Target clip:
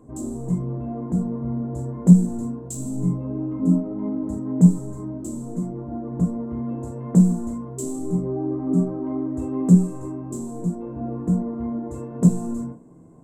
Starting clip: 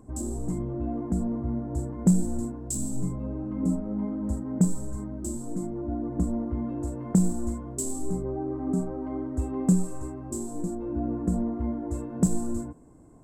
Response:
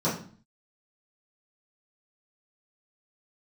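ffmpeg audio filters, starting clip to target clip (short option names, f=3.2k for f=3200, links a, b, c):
-filter_complex "[0:a]asplit=2[a][b];[1:a]atrim=start_sample=2205,atrim=end_sample=3087[c];[b][c]afir=irnorm=-1:irlink=0,volume=-13dB[d];[a][d]amix=inputs=2:normalize=0,volume=-1dB"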